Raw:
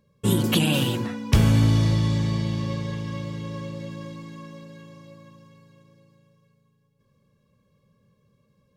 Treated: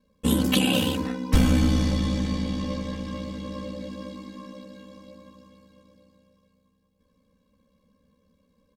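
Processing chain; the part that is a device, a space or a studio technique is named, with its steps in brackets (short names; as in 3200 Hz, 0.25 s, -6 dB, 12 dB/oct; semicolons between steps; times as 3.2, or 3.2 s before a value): ring-modulated robot voice (ring modulator 33 Hz; comb 3.9 ms, depth 97%)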